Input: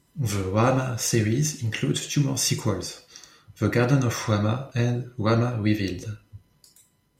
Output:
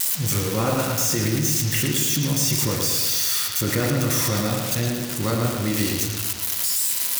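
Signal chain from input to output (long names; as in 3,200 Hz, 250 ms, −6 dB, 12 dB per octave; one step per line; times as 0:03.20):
spike at every zero crossing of −14.5 dBFS
in parallel at +1 dB: compressor whose output falls as the input rises −23 dBFS
on the sum: bucket-brigade delay 111 ms, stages 4,096, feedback 58%, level −4.5 dB
level −7 dB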